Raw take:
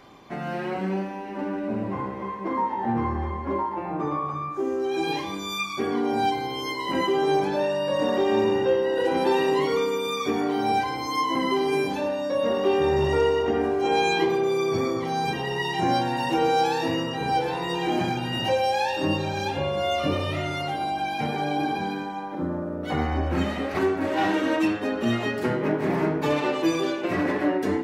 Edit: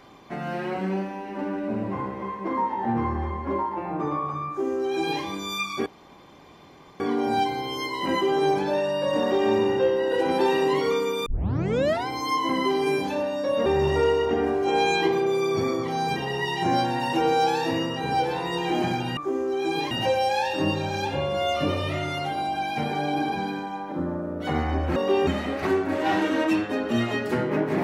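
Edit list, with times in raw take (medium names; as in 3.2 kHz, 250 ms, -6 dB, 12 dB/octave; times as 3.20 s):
4.49–5.23 s: copy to 18.34 s
5.86 s: insert room tone 1.14 s
10.12 s: tape start 0.81 s
12.52–12.83 s: move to 23.39 s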